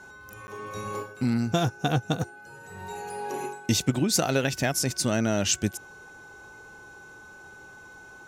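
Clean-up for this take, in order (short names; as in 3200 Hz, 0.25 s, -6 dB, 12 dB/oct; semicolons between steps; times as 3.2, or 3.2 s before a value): notch 1500 Hz, Q 30; interpolate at 0.47, 10 ms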